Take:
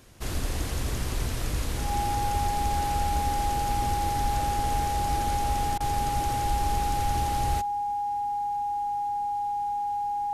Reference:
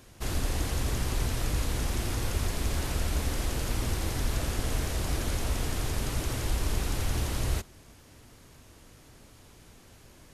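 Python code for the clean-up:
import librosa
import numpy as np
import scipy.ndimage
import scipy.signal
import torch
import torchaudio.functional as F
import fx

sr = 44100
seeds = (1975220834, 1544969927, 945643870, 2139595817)

y = fx.fix_declip(x, sr, threshold_db=-17.0)
y = fx.notch(y, sr, hz=820.0, q=30.0)
y = fx.fix_interpolate(y, sr, at_s=(5.78,), length_ms=22.0)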